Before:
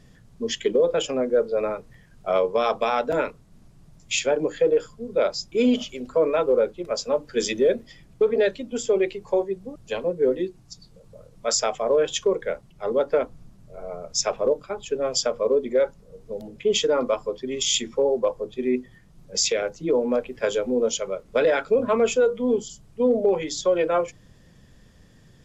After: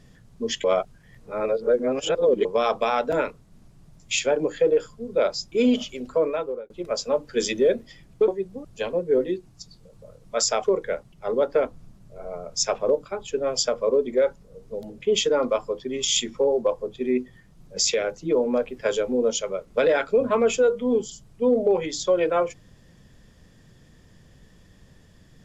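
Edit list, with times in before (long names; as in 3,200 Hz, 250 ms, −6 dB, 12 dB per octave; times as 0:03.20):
0:00.64–0:02.45: reverse
0:06.11–0:06.70: fade out
0:08.28–0:09.39: remove
0:11.75–0:12.22: remove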